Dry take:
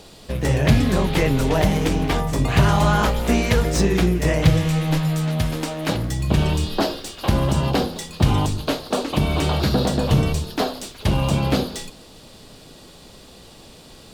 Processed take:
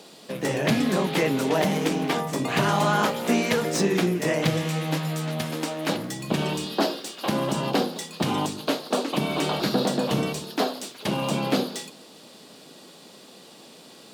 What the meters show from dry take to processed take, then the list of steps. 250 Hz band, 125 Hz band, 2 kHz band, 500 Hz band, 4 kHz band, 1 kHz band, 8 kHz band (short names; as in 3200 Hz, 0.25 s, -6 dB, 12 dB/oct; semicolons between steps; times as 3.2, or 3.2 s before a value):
-3.5 dB, -10.5 dB, -2.0 dB, -2.0 dB, -2.0 dB, -2.0 dB, -2.0 dB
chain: HPF 180 Hz 24 dB/oct; gain -2 dB